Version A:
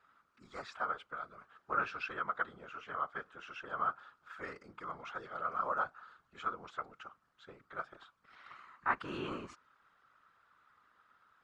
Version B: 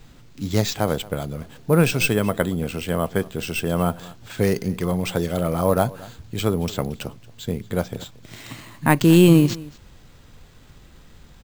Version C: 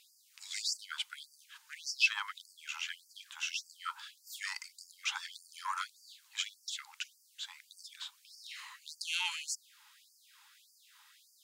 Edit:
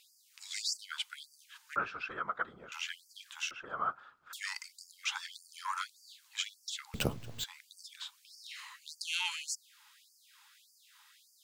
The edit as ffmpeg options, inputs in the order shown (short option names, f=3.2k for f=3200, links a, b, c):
-filter_complex "[0:a]asplit=2[a][b];[2:a]asplit=4[c][d][e][f];[c]atrim=end=1.762[g];[a]atrim=start=1.758:end=2.722[h];[d]atrim=start=2.718:end=3.512[i];[b]atrim=start=3.508:end=4.332[j];[e]atrim=start=4.328:end=6.942[k];[1:a]atrim=start=6.938:end=7.442[l];[f]atrim=start=7.438[m];[g][h]acrossfade=d=0.004:c1=hsin:c2=hsin[n];[n][i]acrossfade=d=0.004:c1=hsin:c2=hsin[o];[o][j]acrossfade=d=0.004:c1=hsin:c2=hsin[p];[p][k]acrossfade=d=0.004:c1=hsin:c2=hsin[q];[q][l]acrossfade=d=0.004:c1=hsin:c2=hsin[r];[r][m]acrossfade=d=0.004:c1=hsin:c2=hsin"